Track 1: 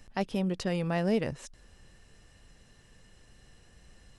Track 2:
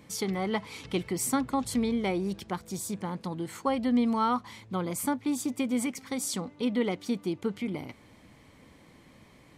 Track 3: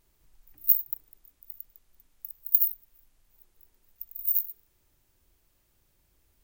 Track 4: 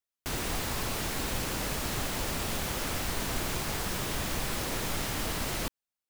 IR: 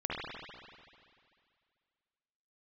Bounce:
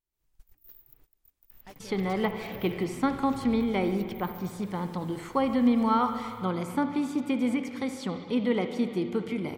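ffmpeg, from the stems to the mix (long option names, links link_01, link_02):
-filter_complex "[0:a]aemphasis=mode=production:type=riaa,aeval=exprs='0.0422*(abs(mod(val(0)/0.0422+3,4)-2)-1)':channel_layout=same,adelay=1500,volume=-12dB,asplit=2[link_01][link_02];[link_02]volume=-18.5dB[link_03];[1:a]adelay=1700,volume=0dB,asplit=2[link_04][link_05];[link_05]volume=-11.5dB[link_06];[2:a]dynaudnorm=framelen=110:gausssize=3:maxgain=13.5dB,volume=-5dB[link_07];[4:a]atrim=start_sample=2205[link_08];[link_03][link_06]amix=inputs=2:normalize=0[link_09];[link_09][link_08]afir=irnorm=-1:irlink=0[link_10];[link_01][link_04][link_07][link_10]amix=inputs=4:normalize=0,agate=range=-21dB:threshold=-43dB:ratio=16:detection=peak,acrossover=split=3500[link_11][link_12];[link_12]acompressor=threshold=-51dB:ratio=4:attack=1:release=60[link_13];[link_11][link_13]amix=inputs=2:normalize=0"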